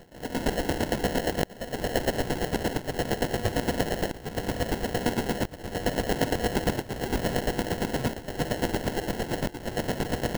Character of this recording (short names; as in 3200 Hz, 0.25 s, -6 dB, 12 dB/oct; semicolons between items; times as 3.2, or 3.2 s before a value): a buzz of ramps at a fixed pitch in blocks of 8 samples; chopped level 8.7 Hz, depth 65%, duty 30%; aliases and images of a low sample rate 1200 Hz, jitter 0%